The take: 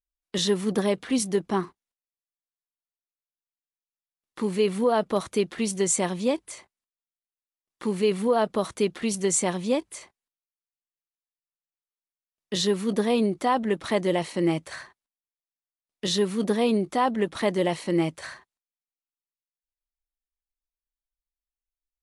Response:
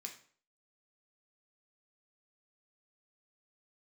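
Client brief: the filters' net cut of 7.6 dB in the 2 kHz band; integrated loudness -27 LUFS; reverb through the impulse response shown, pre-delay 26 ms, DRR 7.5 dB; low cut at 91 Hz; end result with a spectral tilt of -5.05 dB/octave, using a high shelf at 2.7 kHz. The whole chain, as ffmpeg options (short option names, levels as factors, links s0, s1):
-filter_complex "[0:a]highpass=91,equalizer=f=2000:t=o:g=-8,highshelf=f=2700:g=-3,asplit=2[s0][s1];[1:a]atrim=start_sample=2205,adelay=26[s2];[s1][s2]afir=irnorm=-1:irlink=0,volume=0.668[s3];[s0][s3]amix=inputs=2:normalize=0,volume=0.841"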